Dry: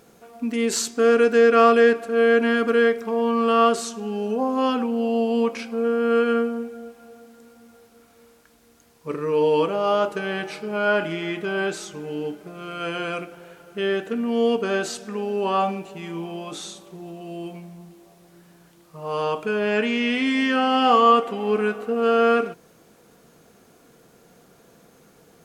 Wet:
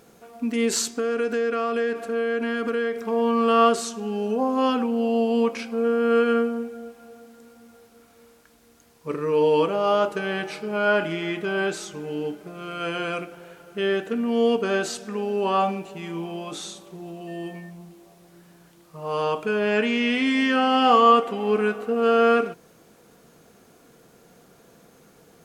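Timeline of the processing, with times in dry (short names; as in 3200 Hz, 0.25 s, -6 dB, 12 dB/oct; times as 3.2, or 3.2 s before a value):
0.84–2.99 compressor 4:1, threshold -22 dBFS
17.27–17.69 whine 1800 Hz -47 dBFS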